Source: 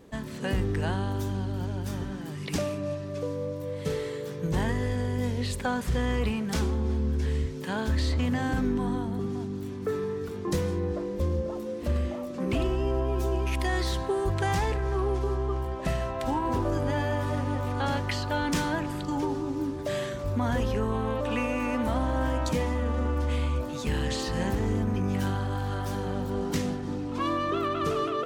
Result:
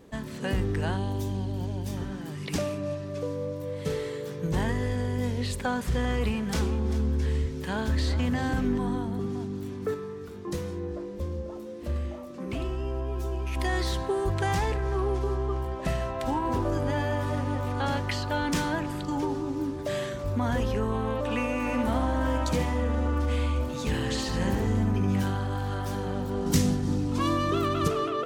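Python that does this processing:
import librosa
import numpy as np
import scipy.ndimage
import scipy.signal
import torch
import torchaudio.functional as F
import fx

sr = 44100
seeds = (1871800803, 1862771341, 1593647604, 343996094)

y = fx.peak_eq(x, sr, hz=1400.0, db=-12.5, octaves=0.47, at=(0.97, 1.97))
y = fx.echo_single(y, sr, ms=393, db=-13.5, at=(6.03, 8.77), fade=0.02)
y = fx.comb_fb(y, sr, f0_hz=69.0, decay_s=0.35, harmonics='all', damping=0.0, mix_pct=60, at=(9.94, 13.56))
y = fx.echo_single(y, sr, ms=72, db=-5.5, at=(21.59, 25.22))
y = fx.bass_treble(y, sr, bass_db=9, treble_db=10, at=(26.46, 27.88))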